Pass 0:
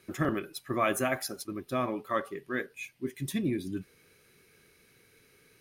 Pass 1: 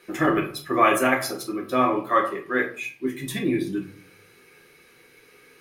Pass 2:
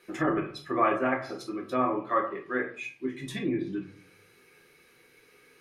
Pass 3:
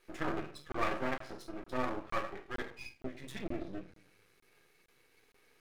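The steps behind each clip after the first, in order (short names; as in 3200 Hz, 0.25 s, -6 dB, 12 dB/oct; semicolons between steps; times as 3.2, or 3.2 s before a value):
tone controls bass -14 dB, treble -5 dB; reverb RT60 0.45 s, pre-delay 6 ms, DRR -1.5 dB; gain +7 dB
treble ducked by the level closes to 1700 Hz, closed at -18.5 dBFS; gain -5.5 dB
half-wave rectifier; crackling interface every 0.46 s, samples 1024, zero, from 0.72; gain -5 dB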